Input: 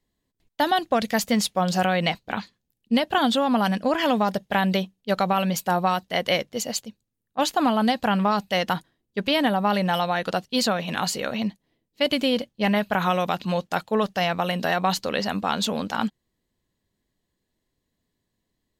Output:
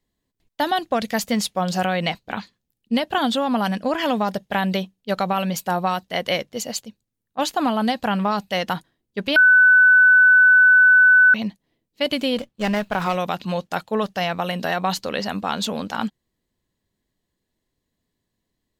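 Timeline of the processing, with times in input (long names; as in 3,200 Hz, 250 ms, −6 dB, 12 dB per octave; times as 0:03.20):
0:09.36–0:11.34: beep over 1,500 Hz −9 dBFS
0:12.37–0:13.15: windowed peak hold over 5 samples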